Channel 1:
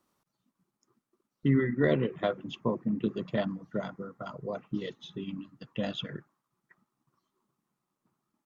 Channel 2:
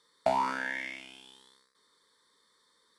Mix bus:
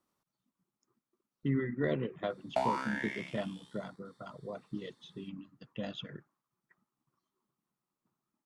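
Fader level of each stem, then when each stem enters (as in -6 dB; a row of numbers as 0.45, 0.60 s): -6.5, -4.0 dB; 0.00, 2.30 s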